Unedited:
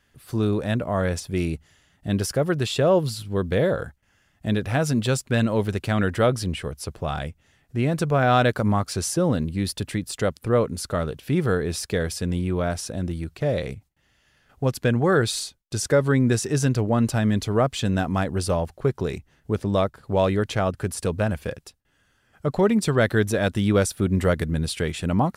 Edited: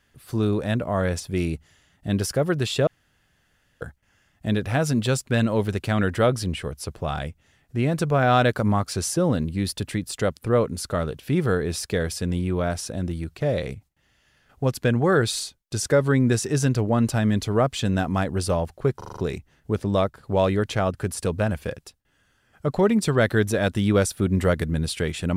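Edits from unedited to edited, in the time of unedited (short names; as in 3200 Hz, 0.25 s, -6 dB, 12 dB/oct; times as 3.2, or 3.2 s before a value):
2.87–3.81 room tone
18.97 stutter 0.04 s, 6 plays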